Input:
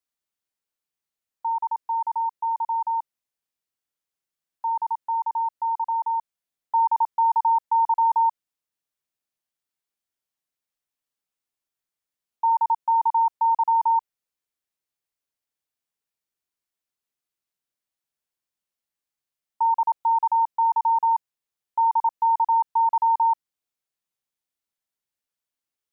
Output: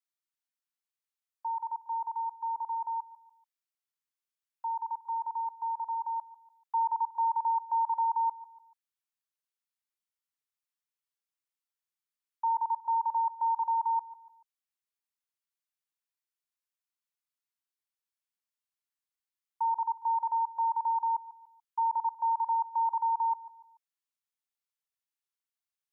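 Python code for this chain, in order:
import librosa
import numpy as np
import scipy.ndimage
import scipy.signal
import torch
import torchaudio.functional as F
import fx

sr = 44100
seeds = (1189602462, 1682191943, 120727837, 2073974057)

y = scipy.signal.sosfilt(scipy.signal.butter(6, 850.0, 'highpass', fs=sr, output='sos'), x)
y = fx.echo_feedback(y, sr, ms=145, feedback_pct=39, wet_db=-17)
y = y * librosa.db_to_amplitude(-6.5)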